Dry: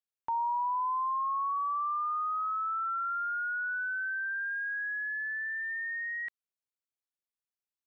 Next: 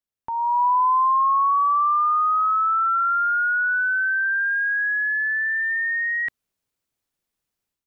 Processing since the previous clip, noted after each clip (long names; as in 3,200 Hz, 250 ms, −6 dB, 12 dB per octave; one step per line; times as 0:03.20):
automatic gain control gain up to 11.5 dB
low-shelf EQ 380 Hz +9.5 dB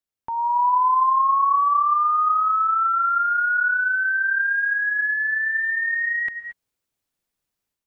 reverb whose tail is shaped and stops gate 250 ms rising, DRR 10.5 dB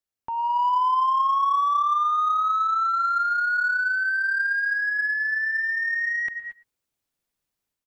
in parallel at −5.5 dB: soft clipping −22.5 dBFS, distortion −12 dB
on the sum: single-tap delay 113 ms −20 dB
level −5 dB